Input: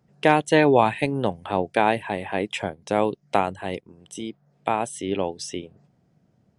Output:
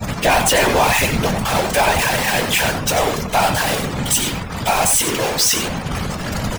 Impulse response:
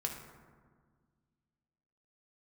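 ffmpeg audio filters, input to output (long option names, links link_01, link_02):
-filter_complex "[0:a]aeval=exprs='val(0)+0.5*0.141*sgn(val(0))':channel_layout=same,equalizer=frequency=320:width=1.3:gain=-10,asplit=2[link_01][link_02];[link_02]adelay=16,volume=-10.5dB[link_03];[link_01][link_03]amix=inputs=2:normalize=0,asplit=2[link_04][link_05];[link_05]aeval=exprs='clip(val(0),-1,0.0422)':channel_layout=same,volume=-7dB[link_06];[link_04][link_06]amix=inputs=2:normalize=0,highshelf=frequency=3900:gain=5.5,asplit=2[link_07][link_08];[link_08]adelay=93.29,volume=-7dB,highshelf=frequency=4000:gain=-2.1[link_09];[link_07][link_09]amix=inputs=2:normalize=0,agate=range=-33dB:threshold=-19dB:ratio=3:detection=peak,afftfilt=real='hypot(re,im)*cos(2*PI*random(0))':imag='hypot(re,im)*sin(2*PI*random(1))':win_size=512:overlap=0.75,apsyclip=13dB,afftdn=noise_reduction=22:noise_floor=-26,volume=-7dB"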